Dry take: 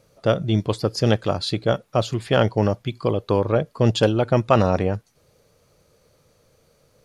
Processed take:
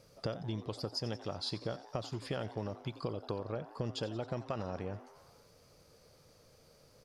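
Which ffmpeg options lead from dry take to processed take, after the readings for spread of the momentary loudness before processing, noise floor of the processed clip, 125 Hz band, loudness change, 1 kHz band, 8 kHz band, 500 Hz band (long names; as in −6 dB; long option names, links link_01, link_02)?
6 LU, −63 dBFS, −18.5 dB, −18.5 dB, −19.0 dB, −15.0 dB, −19.5 dB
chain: -filter_complex "[0:a]equalizer=frequency=5000:width=6.4:gain=10,acompressor=threshold=-31dB:ratio=12,asplit=7[link_01][link_02][link_03][link_04][link_05][link_06][link_07];[link_02]adelay=89,afreqshift=150,volume=-16dB[link_08];[link_03]adelay=178,afreqshift=300,volume=-20dB[link_09];[link_04]adelay=267,afreqshift=450,volume=-24dB[link_10];[link_05]adelay=356,afreqshift=600,volume=-28dB[link_11];[link_06]adelay=445,afreqshift=750,volume=-32.1dB[link_12];[link_07]adelay=534,afreqshift=900,volume=-36.1dB[link_13];[link_01][link_08][link_09][link_10][link_11][link_12][link_13]amix=inputs=7:normalize=0,volume=-3.5dB"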